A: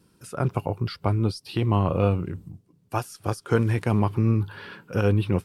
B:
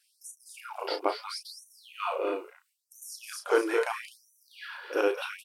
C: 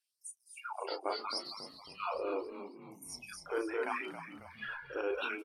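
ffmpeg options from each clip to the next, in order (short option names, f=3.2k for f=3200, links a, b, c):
-filter_complex "[0:a]asplit=2[a][b];[b]adelay=33,volume=-8dB[c];[a][c]amix=inputs=2:normalize=0,aecho=1:1:215.7|250.7:0.398|0.398,afftfilt=real='re*gte(b*sr/1024,270*pow(5800/270,0.5+0.5*sin(2*PI*0.75*pts/sr)))':imag='im*gte(b*sr/1024,270*pow(5800/270,0.5+0.5*sin(2*PI*0.75*pts/sr)))':win_size=1024:overlap=0.75"
-filter_complex "[0:a]afftdn=nr=20:nf=-40,areverse,acompressor=threshold=-37dB:ratio=5,areverse,asplit=6[a][b][c][d][e][f];[b]adelay=272,afreqshift=-81,volume=-10.5dB[g];[c]adelay=544,afreqshift=-162,volume=-16.7dB[h];[d]adelay=816,afreqshift=-243,volume=-22.9dB[i];[e]adelay=1088,afreqshift=-324,volume=-29.1dB[j];[f]adelay=1360,afreqshift=-405,volume=-35.3dB[k];[a][g][h][i][j][k]amix=inputs=6:normalize=0,volume=3dB"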